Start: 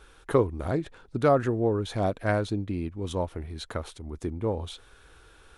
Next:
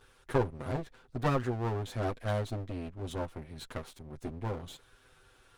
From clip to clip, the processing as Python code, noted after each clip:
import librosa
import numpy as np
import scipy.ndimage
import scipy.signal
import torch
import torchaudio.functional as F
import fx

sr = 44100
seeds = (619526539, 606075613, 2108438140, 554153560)

y = fx.lower_of_two(x, sr, delay_ms=7.9)
y = y * librosa.db_to_amplitude(-5.5)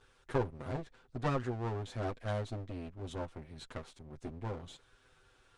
y = scipy.signal.sosfilt(scipy.signal.butter(4, 9000.0, 'lowpass', fs=sr, output='sos'), x)
y = y * librosa.db_to_amplitude(-4.0)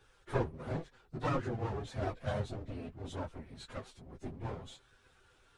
y = fx.phase_scramble(x, sr, seeds[0], window_ms=50)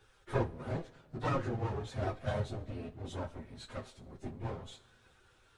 y = fx.rev_double_slope(x, sr, seeds[1], early_s=0.24, late_s=1.8, knee_db=-18, drr_db=8.5)